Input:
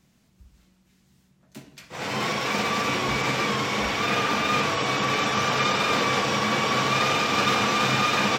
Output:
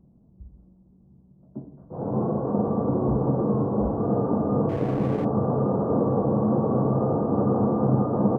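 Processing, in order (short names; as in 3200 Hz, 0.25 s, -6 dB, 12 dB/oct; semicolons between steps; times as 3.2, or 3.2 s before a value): Gaussian blur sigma 13 samples; 4.69–5.25 backlash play -36 dBFS; gain +8 dB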